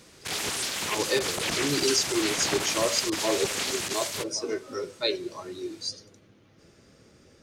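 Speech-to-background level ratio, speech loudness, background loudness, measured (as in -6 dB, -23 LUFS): -1.0 dB, -29.5 LUFS, -28.5 LUFS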